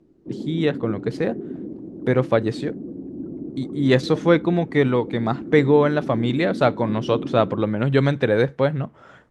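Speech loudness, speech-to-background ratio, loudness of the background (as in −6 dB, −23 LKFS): −21.0 LKFS, 11.5 dB, −32.5 LKFS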